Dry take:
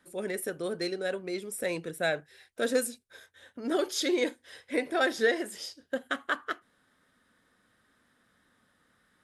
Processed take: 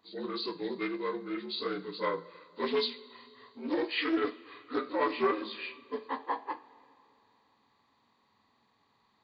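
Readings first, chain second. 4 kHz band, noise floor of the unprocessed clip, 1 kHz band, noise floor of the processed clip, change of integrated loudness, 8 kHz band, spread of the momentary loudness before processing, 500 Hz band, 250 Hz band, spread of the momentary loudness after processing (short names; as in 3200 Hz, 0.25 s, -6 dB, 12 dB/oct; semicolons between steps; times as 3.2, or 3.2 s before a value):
-0.5 dB, -71 dBFS, +2.5 dB, -71 dBFS, -2.5 dB, under -35 dB, 12 LU, -3.5 dB, -1.0 dB, 13 LU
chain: inharmonic rescaling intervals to 76%; high shelf 3800 Hz +7 dB; two-slope reverb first 0.37 s, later 2.9 s, from -17 dB, DRR 10 dB; Doppler distortion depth 0.14 ms; gain -2 dB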